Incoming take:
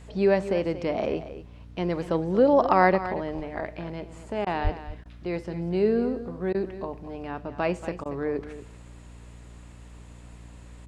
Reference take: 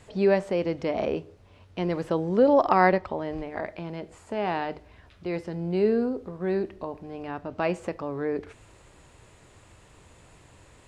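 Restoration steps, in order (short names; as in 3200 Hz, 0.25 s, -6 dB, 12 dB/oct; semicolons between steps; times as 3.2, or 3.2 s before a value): de-hum 58.9 Hz, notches 5; 4.63–4.75 HPF 140 Hz 24 dB/oct; interpolate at 4.45/5.04/6.53/8.04, 14 ms; inverse comb 0.232 s -13 dB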